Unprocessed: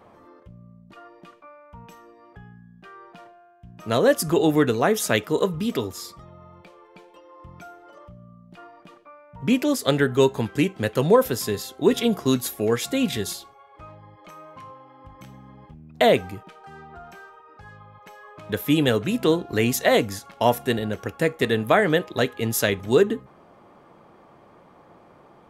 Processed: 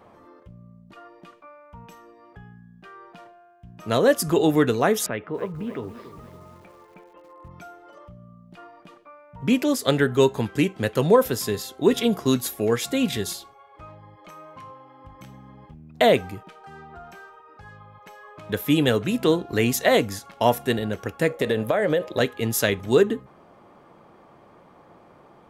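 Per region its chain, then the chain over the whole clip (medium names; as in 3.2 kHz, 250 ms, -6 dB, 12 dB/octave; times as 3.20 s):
5.06–7.51 s: low-pass 2.4 kHz 24 dB/octave + compression 1.5:1, threshold -37 dBFS + bit-crushed delay 282 ms, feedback 55%, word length 8-bit, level -12.5 dB
21.30–22.20 s: peaking EQ 550 Hz +13.5 dB 0.34 oct + compression 10:1, threshold -17 dBFS
whole clip: none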